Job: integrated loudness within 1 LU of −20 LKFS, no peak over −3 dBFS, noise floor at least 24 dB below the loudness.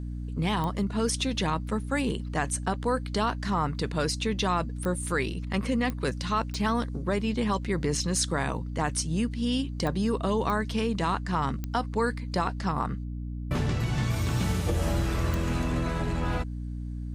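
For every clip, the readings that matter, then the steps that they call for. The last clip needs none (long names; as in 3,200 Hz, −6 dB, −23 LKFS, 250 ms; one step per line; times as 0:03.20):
number of clicks 8; mains hum 60 Hz; hum harmonics up to 300 Hz; level of the hum −32 dBFS; integrated loudness −29.0 LKFS; sample peak −14.0 dBFS; target loudness −20.0 LKFS
→ click removal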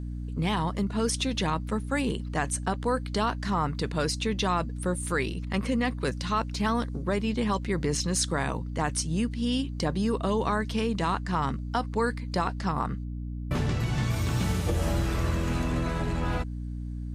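number of clicks 0; mains hum 60 Hz; hum harmonics up to 300 Hz; level of the hum −32 dBFS
→ mains-hum notches 60/120/180/240/300 Hz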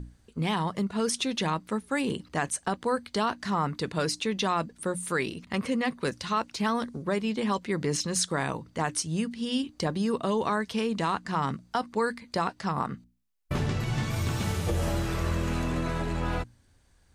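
mains hum none found; integrated loudness −29.5 LKFS; sample peak −14.5 dBFS; target loudness −20.0 LKFS
→ level +9.5 dB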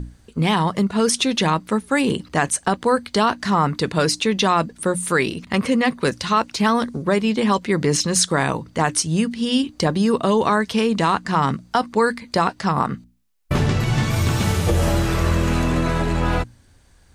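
integrated loudness −20.0 LKFS; sample peak −5.0 dBFS; background noise floor −53 dBFS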